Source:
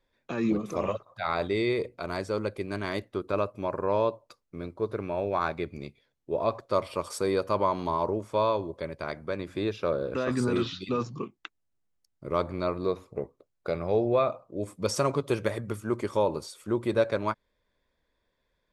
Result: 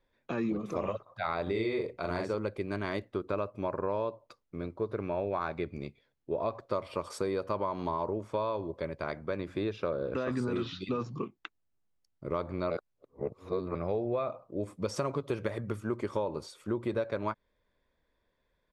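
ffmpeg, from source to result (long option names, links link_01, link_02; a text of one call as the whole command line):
ffmpeg -i in.wav -filter_complex "[0:a]asplit=3[link_01][link_02][link_03];[link_01]afade=type=out:start_time=1.46:duration=0.02[link_04];[link_02]asplit=2[link_05][link_06];[link_06]adelay=45,volume=-3dB[link_07];[link_05][link_07]amix=inputs=2:normalize=0,afade=type=in:start_time=1.46:duration=0.02,afade=type=out:start_time=2.34:duration=0.02[link_08];[link_03]afade=type=in:start_time=2.34:duration=0.02[link_09];[link_04][link_08][link_09]amix=inputs=3:normalize=0,asplit=3[link_10][link_11][link_12];[link_10]atrim=end=12.702[link_13];[link_11]atrim=start=12.698:end=13.752,asetpts=PTS-STARTPTS,areverse[link_14];[link_12]atrim=start=13.748[link_15];[link_13][link_14]acrossfade=duration=0.004:curve1=hsin:curve2=hsin[link_16];[link_16][link_15]acrossfade=duration=0.004:curve1=hsin:curve2=hsin,lowpass=frequency=3300:poles=1,acompressor=threshold=-28dB:ratio=6" out.wav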